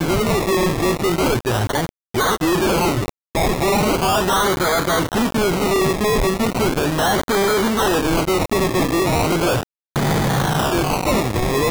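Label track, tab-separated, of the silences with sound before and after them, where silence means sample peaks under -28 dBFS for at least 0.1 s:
1.890000	2.140000	silence
3.090000	3.350000	silence
9.630000	9.960000	silence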